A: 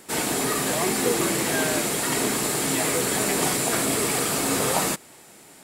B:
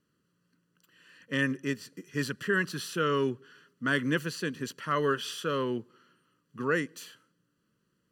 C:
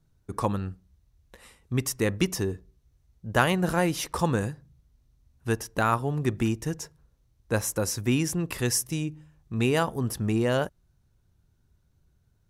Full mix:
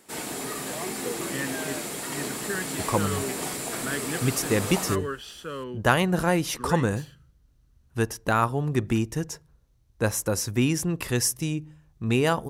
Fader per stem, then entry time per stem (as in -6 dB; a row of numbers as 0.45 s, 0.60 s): -8.5 dB, -5.0 dB, +1.5 dB; 0.00 s, 0.00 s, 2.50 s